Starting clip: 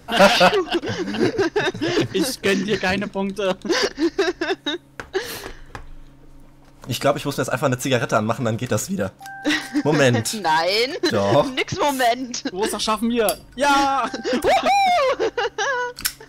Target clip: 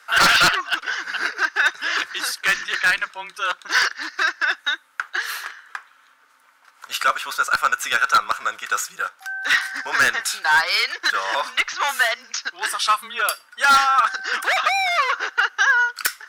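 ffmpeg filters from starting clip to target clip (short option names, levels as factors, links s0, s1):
-af "highpass=f=1400:t=q:w=3.3,aeval=exprs='0.376*(abs(mod(val(0)/0.376+3,4)-2)-1)':c=same,afreqshift=-20"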